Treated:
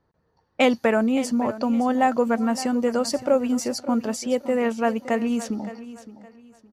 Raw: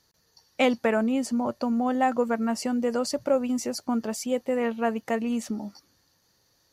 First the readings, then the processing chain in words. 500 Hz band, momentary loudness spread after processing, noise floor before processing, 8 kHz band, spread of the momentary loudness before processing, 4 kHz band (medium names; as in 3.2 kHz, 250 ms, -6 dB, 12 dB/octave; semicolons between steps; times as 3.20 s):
+3.5 dB, 10 LU, -68 dBFS, +3.0 dB, 5 LU, +3.5 dB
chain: level-controlled noise filter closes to 1.1 kHz, open at -25 dBFS; feedback delay 566 ms, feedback 29%, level -15 dB; trim +3.5 dB